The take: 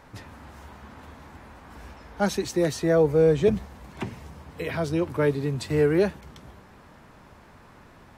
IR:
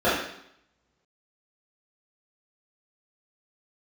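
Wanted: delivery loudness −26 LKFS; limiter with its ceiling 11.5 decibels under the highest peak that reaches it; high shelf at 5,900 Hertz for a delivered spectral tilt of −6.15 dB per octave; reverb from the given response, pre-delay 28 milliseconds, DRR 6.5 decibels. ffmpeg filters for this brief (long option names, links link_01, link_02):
-filter_complex "[0:a]highshelf=frequency=5900:gain=-5,alimiter=limit=-20.5dB:level=0:latency=1,asplit=2[link_01][link_02];[1:a]atrim=start_sample=2205,adelay=28[link_03];[link_02][link_03]afir=irnorm=-1:irlink=0,volume=-26dB[link_04];[link_01][link_04]amix=inputs=2:normalize=0,volume=4dB"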